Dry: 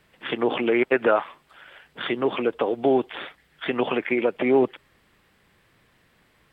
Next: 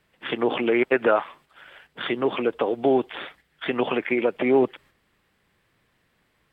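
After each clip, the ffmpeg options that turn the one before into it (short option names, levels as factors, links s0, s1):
-af "agate=range=0.501:threshold=0.00282:ratio=16:detection=peak"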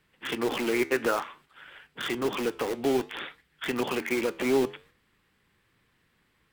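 -filter_complex "[0:a]equalizer=f=640:t=o:w=0.6:g=-7,asplit=2[s0][s1];[s1]aeval=exprs='(mod(15*val(0)+1,2)-1)/15':c=same,volume=0.501[s2];[s0][s2]amix=inputs=2:normalize=0,flanger=delay=6.3:depth=7.4:regen=-83:speed=0.57:shape=triangular"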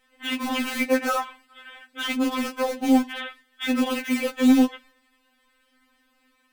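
-af "afftfilt=real='re*3.46*eq(mod(b,12),0)':imag='im*3.46*eq(mod(b,12),0)':win_size=2048:overlap=0.75,volume=2.24"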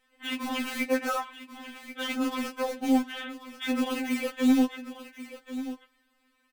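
-af "aecho=1:1:1087:0.224,volume=0.562"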